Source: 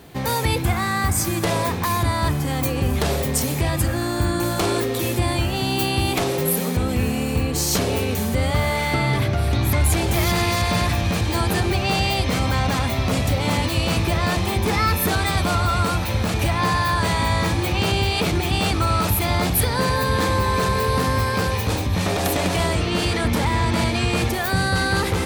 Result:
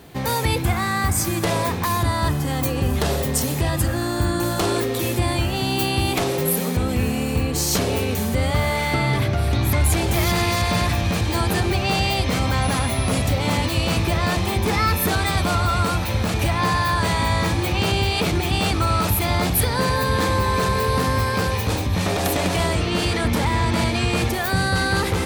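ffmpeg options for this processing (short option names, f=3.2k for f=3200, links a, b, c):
-filter_complex "[0:a]asettb=1/sr,asplit=3[a][b][c];[a]atrim=end=1.874[d];[b]atrim=start=1.87:end=4.75,asetpts=PTS-STARTPTS,afade=t=in:d=0.004:c=qsin,afade=t=out:st=2.876:d=0.004:c=qsin,bandreject=f=2.3k:w=12[e];[c]atrim=start=4.746[f];[d][e]acrossfade=d=0.004:c1=hsin:c2=qsin[g];[g][f]acrossfade=d=0.004:c1=qsin:c2=hsin,asettb=1/sr,asplit=3[h][i][j];[h]atrim=end=12.624[k];[i]atrim=start=12.62:end=13.22,asetpts=PTS-STARTPTS,afade=t=in:d=0.004:c=qsin,afade=t=out:st=0.596:d=0.004:c=qsin,aeval=exprs='val(0)+0.0224*sin(2*PI*10000*n/s)':c=same[l];[j]atrim=start=13.216[m];[k][l]acrossfade=d=0.004:c1=hsin:c2=qsin[n];[n][m]acrossfade=d=0.004:c1=qsin:c2=hsin"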